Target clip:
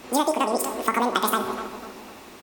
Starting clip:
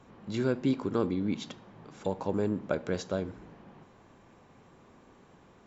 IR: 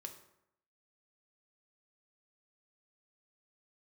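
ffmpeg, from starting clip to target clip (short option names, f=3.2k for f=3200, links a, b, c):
-filter_complex "[0:a]asetrate=103194,aresample=44100,asplit=2[a][b];[1:a]atrim=start_sample=2205,highshelf=f=5.8k:g=12[c];[b][c]afir=irnorm=-1:irlink=0,volume=7.5dB[d];[a][d]amix=inputs=2:normalize=0,dynaudnorm=f=260:g=9:m=11.5dB,asplit=2[e][f];[f]adelay=248,lowpass=f=1.4k:p=1,volume=-13dB,asplit=2[g][h];[h]adelay=248,lowpass=f=1.4k:p=1,volume=0.51,asplit=2[i][j];[j]adelay=248,lowpass=f=1.4k:p=1,volume=0.51,asplit=2[k][l];[l]adelay=248,lowpass=f=1.4k:p=1,volume=0.51,asplit=2[m][n];[n]adelay=248,lowpass=f=1.4k:p=1,volume=0.51[o];[e][g][i][k][m][o]amix=inputs=6:normalize=0,acompressor=threshold=-22dB:ratio=6,equalizer=f=125:t=o:w=1:g=-6,equalizer=f=250:t=o:w=1:g=6,equalizer=f=500:t=o:w=1:g=-5,equalizer=f=2k:t=o:w=1:g=-3,volume=5.5dB"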